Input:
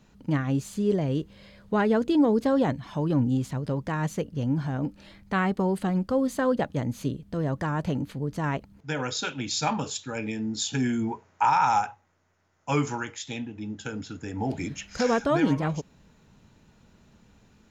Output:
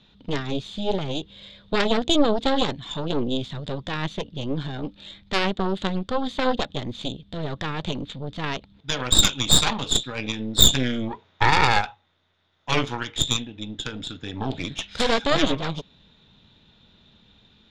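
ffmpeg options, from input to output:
-af "lowpass=f=3600:t=q:w=13,aeval=exprs='0.708*(cos(1*acos(clip(val(0)/0.708,-1,1)))-cos(1*PI/2))+0.251*(cos(6*acos(clip(val(0)/0.708,-1,1)))-cos(6*PI/2))':c=same,volume=0.891"

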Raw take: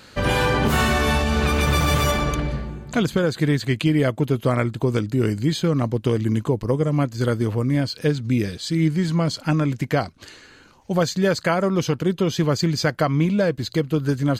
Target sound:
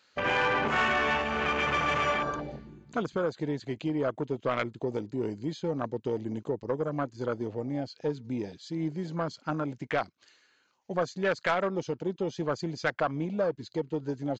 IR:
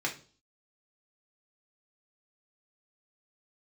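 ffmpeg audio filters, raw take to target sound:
-af "afwtdn=0.0501,highpass=f=900:p=1,aresample=16000,asoftclip=type=tanh:threshold=0.133,aresample=44100"

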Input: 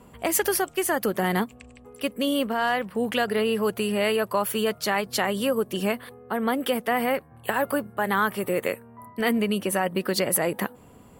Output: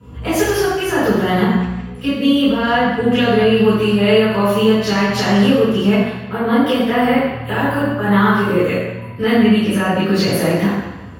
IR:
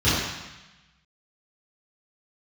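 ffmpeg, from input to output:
-filter_complex "[1:a]atrim=start_sample=2205[s0];[0:a][s0]afir=irnorm=-1:irlink=0,volume=0.299"

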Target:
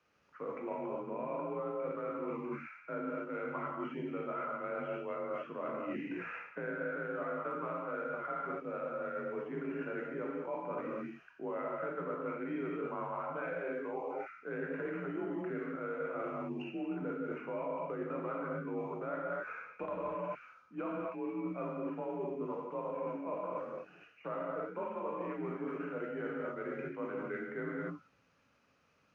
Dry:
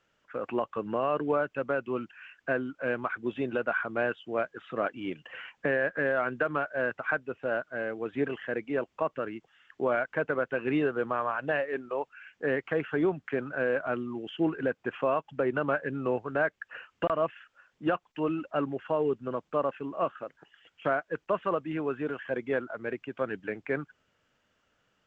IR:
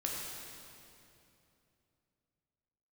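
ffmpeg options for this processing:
-filter_complex "[0:a]asetrate=37926,aresample=44100,afreqshift=40[s0];[1:a]atrim=start_sample=2205,atrim=end_sample=6174,asetrate=22050,aresample=44100[s1];[s0][s1]afir=irnorm=-1:irlink=0,areverse,acompressor=threshold=0.0282:ratio=5,areverse,volume=0.531"

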